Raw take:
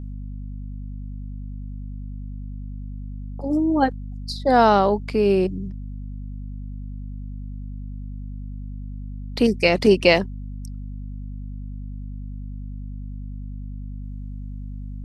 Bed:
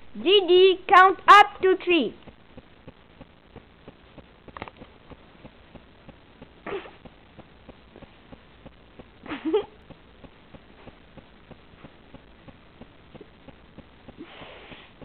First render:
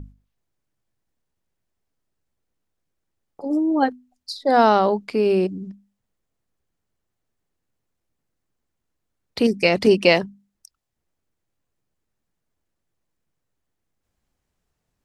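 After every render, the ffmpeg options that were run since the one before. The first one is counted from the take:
-af "bandreject=f=50:t=h:w=6,bandreject=f=100:t=h:w=6,bandreject=f=150:t=h:w=6,bandreject=f=200:t=h:w=6,bandreject=f=250:t=h:w=6"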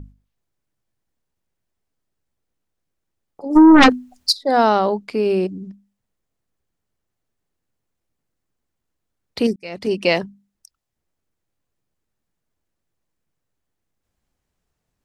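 -filter_complex "[0:a]asplit=3[s0][s1][s2];[s0]afade=t=out:st=3.55:d=0.02[s3];[s1]aeval=exprs='0.531*sin(PI/2*4.47*val(0)/0.531)':c=same,afade=t=in:st=3.55:d=0.02,afade=t=out:st=4.31:d=0.02[s4];[s2]afade=t=in:st=4.31:d=0.02[s5];[s3][s4][s5]amix=inputs=3:normalize=0,asplit=2[s6][s7];[s6]atrim=end=9.56,asetpts=PTS-STARTPTS,afade=t=out:st=9.556:d=0.004:c=hsin[s8];[s7]atrim=start=9.56,asetpts=PTS-STARTPTS,afade=t=in:d=0.68[s9];[s8][s9]concat=n=2:v=0:a=1"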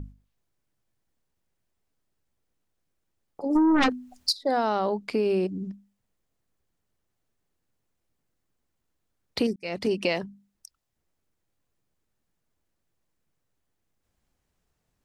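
-af "alimiter=limit=0.376:level=0:latency=1:release=369,acompressor=threshold=0.0631:ratio=2.5"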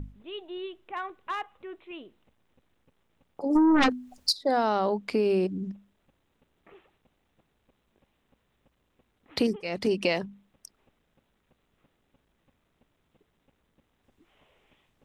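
-filter_complex "[1:a]volume=0.0841[s0];[0:a][s0]amix=inputs=2:normalize=0"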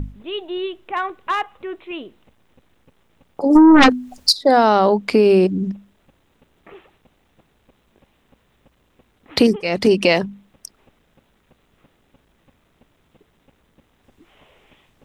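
-af "volume=3.76,alimiter=limit=0.794:level=0:latency=1"

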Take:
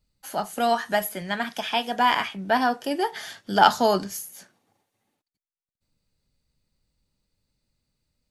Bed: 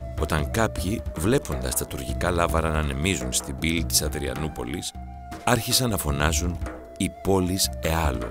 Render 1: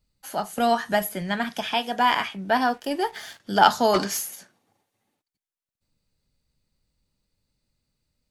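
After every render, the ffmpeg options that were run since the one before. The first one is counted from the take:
-filter_complex "[0:a]asettb=1/sr,asplit=3[s0][s1][s2];[s0]atrim=end=0.584[s3];[s1]atrim=start=0.58:end=1.74,asetpts=PTS-STARTPTS,afade=t=in:d=0.004:c=qsin,afade=t=out:st=1.156:d=0.004:c=qsin,lowshelf=f=220:g=8[s4];[s2]atrim=start=1.736[s5];[s3][s4]acrossfade=d=0.004:c1=hsin:c2=qsin[s6];[s6][s5]acrossfade=d=0.004:c1=qsin:c2=hsin,asettb=1/sr,asplit=3[s7][s8][s9];[s7]atrim=end=2.674[s10];[s8]atrim=start=2.67:end=3.4,asetpts=PTS-STARTPTS,afade=t=in:d=0.004:c=qsin,afade=t=out:st=0.726:d=0.004:c=qsin,aeval=exprs='sgn(val(0))*max(abs(val(0))-0.00355,0)':c=same[s11];[s9]atrim=start=3.396[s12];[s10][s11]acrossfade=d=0.004:c1=hsin:c2=qsin[s13];[s13][s12]acrossfade=d=0.004:c1=qsin:c2=hsin,asplit=3[s14][s15][s16];[s14]afade=t=out:st=3.93:d=0.02[s17];[s15]asplit=2[s18][s19];[s19]highpass=f=720:p=1,volume=10,asoftclip=type=tanh:threshold=0.299[s20];[s18][s20]amix=inputs=2:normalize=0,lowpass=f=4200:p=1,volume=0.501,afade=t=in:st=3.93:d=0.02,afade=t=out:st=4.34:d=0.02[s21];[s16]afade=t=in:st=4.34:d=0.02[s22];[s17][s21][s22]amix=inputs=3:normalize=0"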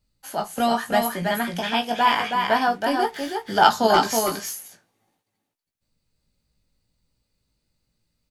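-filter_complex "[0:a]asplit=2[s0][s1];[s1]adelay=18,volume=0.531[s2];[s0][s2]amix=inputs=2:normalize=0,asplit=2[s3][s4];[s4]aecho=0:1:323:0.596[s5];[s3][s5]amix=inputs=2:normalize=0"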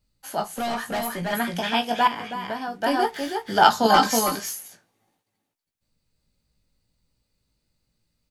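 -filter_complex "[0:a]asettb=1/sr,asplit=3[s0][s1][s2];[s0]atrim=end=0.574[s3];[s1]atrim=start=0.57:end=1.33,asetpts=PTS-STARTPTS,afade=t=in:d=0.004:c=qsin,afade=t=out:st=0.756:d=0.004:c=qsin,aeval=exprs='(tanh(14.1*val(0)+0.1)-tanh(0.1))/14.1':c=same[s4];[s2]atrim=start=1.326[s5];[s3][s4]acrossfade=d=0.004:c1=hsin:c2=qsin[s6];[s6][s5]acrossfade=d=0.004:c1=qsin:c2=hsin,asettb=1/sr,asplit=3[s7][s8][s9];[s7]atrim=end=2.074[s10];[s8]atrim=start=2.07:end=2.83,asetpts=PTS-STARTPTS,afade=t=in:d=0.004:c=qsin,afade=t=out:st=0.756:d=0.004:c=qsin,acrossover=split=450|5000[s11][s12][s13];[s11]acompressor=threshold=0.0178:ratio=4[s14];[s12]acompressor=threshold=0.0251:ratio=4[s15];[s13]acompressor=threshold=0.002:ratio=4[s16];[s14][s15][s16]amix=inputs=3:normalize=0[s17];[s9]atrim=start=2.826[s18];[s10][s17]acrossfade=d=0.004:c1=hsin:c2=qsin[s19];[s19][s18]acrossfade=d=0.004:c1=qsin:c2=hsin,asettb=1/sr,asplit=3[s20][s21][s22];[s20]atrim=end=3.854[s23];[s21]atrim=start=3.85:end=4.35,asetpts=PTS-STARTPTS,afade=t=in:d=0.004:c=qsin,afade=t=out:st=0.496:d=0.004:c=qsin,aecho=1:1:3.9:0.65,atrim=end_sample=22050[s24];[s22]atrim=start=4.346[s25];[s23][s24]acrossfade=d=0.004:c1=hsin:c2=qsin[s26];[s26][s25]acrossfade=d=0.004:c1=qsin:c2=hsin"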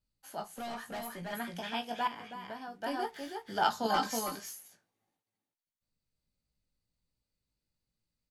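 -af "volume=0.224"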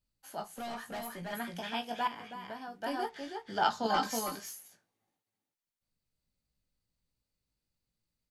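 -filter_complex "[0:a]asettb=1/sr,asplit=3[s0][s1][s2];[s0]atrim=end=3.094[s3];[s1]atrim=start=3.09:end=4.03,asetpts=PTS-STARTPTS,afade=t=in:d=0.004:c=qsin,afade=t=out:st=0.936:d=0.004:c=qsin,lowpass=7100[s4];[s2]atrim=start=4.026[s5];[s3][s4]acrossfade=d=0.004:c1=hsin:c2=qsin[s6];[s6][s5]acrossfade=d=0.004:c1=qsin:c2=hsin"

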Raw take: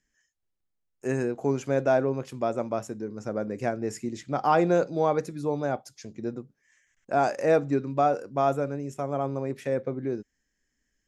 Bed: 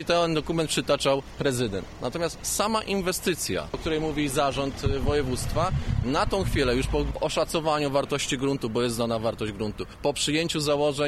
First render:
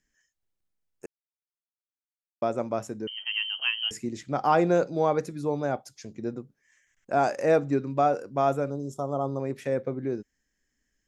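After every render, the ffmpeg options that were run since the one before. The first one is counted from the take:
-filter_complex "[0:a]asettb=1/sr,asplit=3[s0][s1][s2];[s0]atrim=end=3.074[s3];[s1]atrim=start=3.07:end=3.91,asetpts=PTS-STARTPTS,afade=t=in:d=0.004:c=qsin,afade=t=out:st=0.836:d=0.004:c=qsin,lowpass=f=2800:t=q:w=0.5098,lowpass=f=2800:t=q:w=0.6013,lowpass=f=2800:t=q:w=0.9,lowpass=f=2800:t=q:w=2.563,afreqshift=-3300[s4];[s2]atrim=start=3.906[s5];[s3][s4]acrossfade=d=0.004:c1=hsin:c2=qsin[s6];[s6][s5]acrossfade=d=0.004:c1=qsin:c2=hsin,asettb=1/sr,asplit=3[s7][s8][s9];[s7]atrim=end=8.704[s10];[s8]atrim=start=8.7:end=9.4,asetpts=PTS-STARTPTS,afade=t=in:d=0.004:c=qsin,afade=t=out:st=0.696:d=0.004:c=qsin,asuperstop=centerf=2100:order=12:qfactor=1.1[s11];[s9]atrim=start=9.396[s12];[s10][s11]acrossfade=d=0.004:c1=hsin:c2=qsin[s13];[s13][s12]acrossfade=d=0.004:c1=qsin:c2=hsin,asplit=3[s14][s15][s16];[s14]atrim=end=1.06,asetpts=PTS-STARTPTS,afade=t=out:st=1.056:d=0.004:c=hsin[s17];[s15]atrim=start=1.06:end=2.42,asetpts=PTS-STARTPTS,volume=0[s18];[s16]atrim=start=2.42,asetpts=PTS-STARTPTS,afade=t=in:d=0.004:c=hsin[s19];[s17][s18][s19]concat=n=3:v=0:a=1"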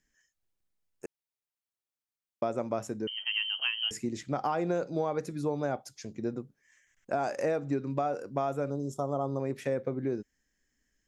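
-af "alimiter=limit=0.178:level=0:latency=1:release=241,acompressor=threshold=0.0501:ratio=6"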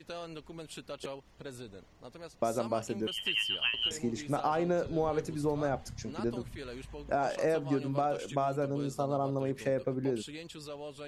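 -filter_complex "[1:a]volume=0.106[s0];[0:a][s0]amix=inputs=2:normalize=0"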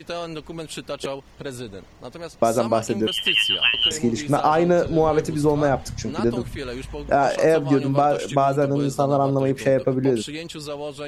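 -af "volume=3.98"

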